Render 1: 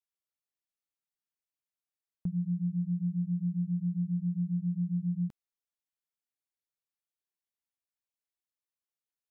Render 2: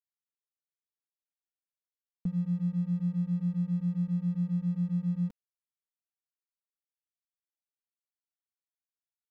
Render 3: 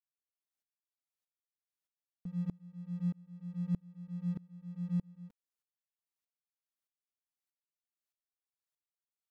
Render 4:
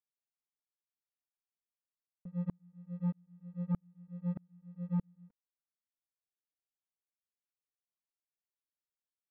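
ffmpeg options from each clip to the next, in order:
ffmpeg -i in.wav -af "aeval=exprs='sgn(val(0))*max(abs(val(0))-0.00158,0)':channel_layout=same,aecho=1:1:4.2:0.76" out.wav
ffmpeg -i in.wav -af "lowshelf=frequency=430:gain=-4.5,aeval=exprs='val(0)*pow(10,-29*if(lt(mod(-1.6*n/s,1),2*abs(-1.6)/1000),1-mod(-1.6*n/s,1)/(2*abs(-1.6)/1000),(mod(-1.6*n/s,1)-2*abs(-1.6)/1000)/(1-2*abs(-1.6)/1000))/20)':channel_layout=same,volume=3.5dB" out.wav
ffmpeg -i in.wav -af "lowpass=1700,aeval=exprs='0.0631*(cos(1*acos(clip(val(0)/0.0631,-1,1)))-cos(1*PI/2))+0.00562*(cos(7*acos(clip(val(0)/0.0631,-1,1)))-cos(7*PI/2))':channel_layout=same" out.wav

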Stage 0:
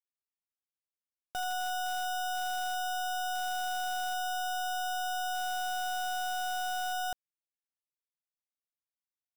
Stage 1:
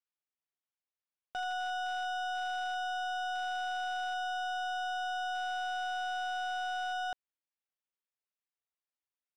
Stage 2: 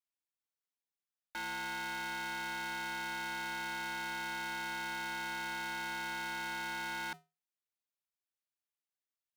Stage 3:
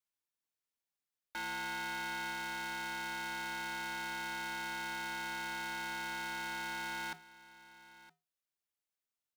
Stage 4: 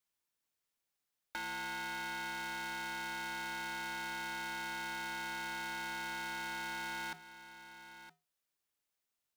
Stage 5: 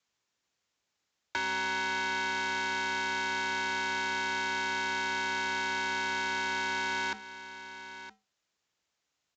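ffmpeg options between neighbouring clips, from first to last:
ffmpeg -i in.wav -af "lowpass=3500,lowshelf=frequency=280:gain=-9.5" out.wav
ffmpeg -i in.wav -af "afreqshift=440,aeval=exprs='val(0)*sgn(sin(2*PI*280*n/s))':channel_layout=same,volume=-4dB" out.wav
ffmpeg -i in.wav -af "aecho=1:1:966:0.112" out.wav
ffmpeg -i in.wav -af "acompressor=threshold=-45dB:ratio=3,volume=4.5dB" out.wav
ffmpeg -i in.wav -af "afreqshift=45,aresample=16000,aresample=44100,volume=9dB" out.wav

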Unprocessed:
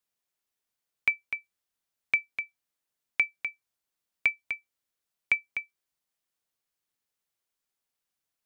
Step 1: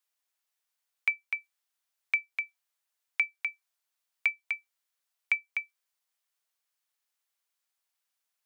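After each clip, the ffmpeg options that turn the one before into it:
ffmpeg -i in.wav -af "alimiter=limit=-17dB:level=0:latency=1:release=380,highpass=720,volume=2dB" out.wav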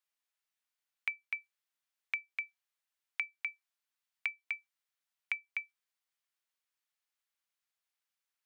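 ffmpeg -i in.wav -af "equalizer=frequency=2100:width_type=o:width=2.5:gain=5.5,acompressor=threshold=-23dB:ratio=6,volume=-8.5dB" out.wav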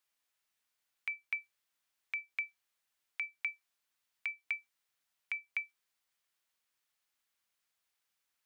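ffmpeg -i in.wav -af "alimiter=level_in=5dB:limit=-24dB:level=0:latency=1,volume=-5dB,volume=5.5dB" out.wav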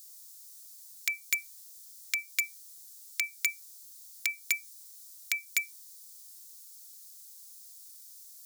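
ffmpeg -i in.wav -filter_complex "[0:a]acrossover=split=1100|1800[link_01][link_02][link_03];[link_01]aeval=exprs='(mod(668*val(0)+1,2)-1)/668':channel_layout=same[link_04];[link_04][link_02][link_03]amix=inputs=3:normalize=0,aexciter=amount=14:drive=6.4:freq=4100,volume=7.5dB" out.wav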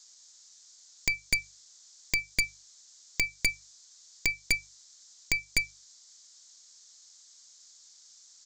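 ffmpeg -i in.wav -af "aresample=16000,aresample=44100,aeval=exprs='0.266*(cos(1*acos(clip(val(0)/0.266,-1,1)))-cos(1*PI/2))+0.0944*(cos(5*acos(clip(val(0)/0.266,-1,1)))-cos(5*PI/2))+0.119*(cos(6*acos(clip(val(0)/0.266,-1,1)))-cos(6*PI/2))':channel_layout=same,bandreject=frequency=50:width_type=h:width=6,bandreject=frequency=100:width_type=h:width=6,bandreject=frequency=150:width_type=h:width=6,volume=-4.5dB" out.wav

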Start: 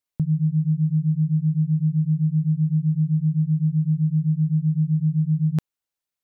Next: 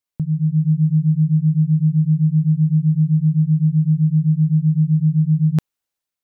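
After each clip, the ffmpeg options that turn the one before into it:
ffmpeg -i in.wav -af "dynaudnorm=framelen=180:gausssize=5:maxgain=5dB" out.wav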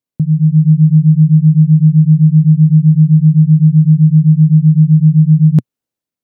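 ffmpeg -i in.wav -af "equalizer=frequency=125:width_type=o:width=1:gain=10,equalizer=frequency=250:width_type=o:width=1:gain=11,equalizer=frequency=500:width_type=o:width=1:gain=6,volume=-3dB" out.wav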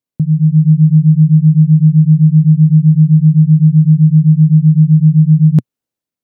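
ffmpeg -i in.wav -af anull out.wav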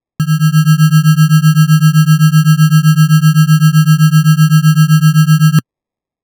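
ffmpeg -i in.wav -af "acrusher=samples=30:mix=1:aa=0.000001" out.wav

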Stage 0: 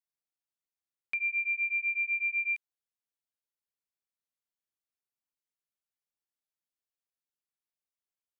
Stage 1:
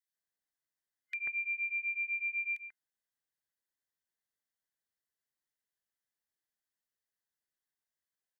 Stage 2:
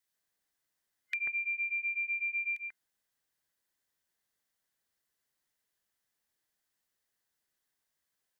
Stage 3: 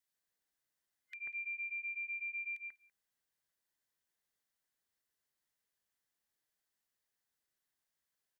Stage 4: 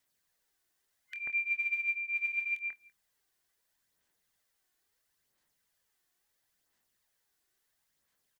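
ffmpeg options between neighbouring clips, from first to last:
ffmpeg -i in.wav -filter_complex "[0:a]superequalizer=11b=2.82:12b=0.631,acrossover=split=1800[link_01][link_02];[link_01]adelay=140[link_03];[link_03][link_02]amix=inputs=2:normalize=0" out.wav
ffmpeg -i in.wav -af "acompressor=threshold=-40dB:ratio=6,volume=8dB" out.wav
ffmpeg -i in.wav -af "alimiter=level_in=7.5dB:limit=-24dB:level=0:latency=1:release=265,volume=-7.5dB,aecho=1:1:194:0.0708,volume=-4.5dB" out.wav
ffmpeg -i in.wav -filter_complex "[0:a]aphaser=in_gain=1:out_gain=1:delay=2.8:decay=0.41:speed=0.74:type=sinusoidal,asplit=2[link_01][link_02];[link_02]adelay=25,volume=-12dB[link_03];[link_01][link_03]amix=inputs=2:normalize=0,volume=7.5dB" out.wav

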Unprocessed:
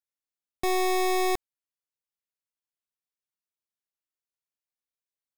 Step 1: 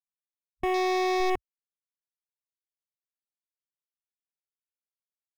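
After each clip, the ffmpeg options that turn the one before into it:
ffmpeg -i in.wav -af "afwtdn=0.0141" out.wav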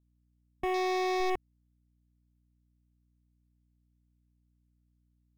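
ffmpeg -i in.wav -af "aeval=exprs='val(0)+0.000501*(sin(2*PI*60*n/s)+sin(2*PI*2*60*n/s)/2+sin(2*PI*3*60*n/s)/3+sin(2*PI*4*60*n/s)/4+sin(2*PI*5*60*n/s)/5)':channel_layout=same,volume=-4dB" out.wav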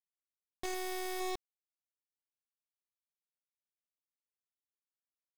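ffmpeg -i in.wav -af "aeval=exprs='0.0708*(cos(1*acos(clip(val(0)/0.0708,-1,1)))-cos(1*PI/2))+0.0282*(cos(5*acos(clip(val(0)/0.0708,-1,1)))-cos(5*PI/2))':channel_layout=same,acrusher=bits=5:dc=4:mix=0:aa=0.000001,volume=-2.5dB" out.wav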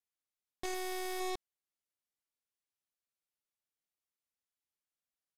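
ffmpeg -i in.wav -af "aresample=32000,aresample=44100" out.wav

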